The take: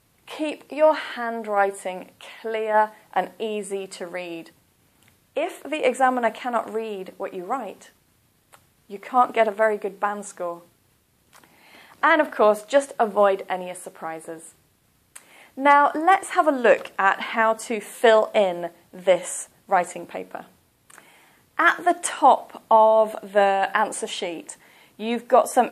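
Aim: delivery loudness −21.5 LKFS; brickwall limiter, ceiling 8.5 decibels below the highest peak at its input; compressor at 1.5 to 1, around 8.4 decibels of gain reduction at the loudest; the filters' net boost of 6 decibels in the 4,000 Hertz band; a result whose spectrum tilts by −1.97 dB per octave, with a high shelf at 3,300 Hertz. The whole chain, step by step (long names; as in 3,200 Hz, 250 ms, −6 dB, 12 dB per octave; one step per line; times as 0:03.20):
high-shelf EQ 3,300 Hz +7.5 dB
parametric band 4,000 Hz +3.5 dB
downward compressor 1.5 to 1, threshold −34 dBFS
level +9 dB
brickwall limiter −7.5 dBFS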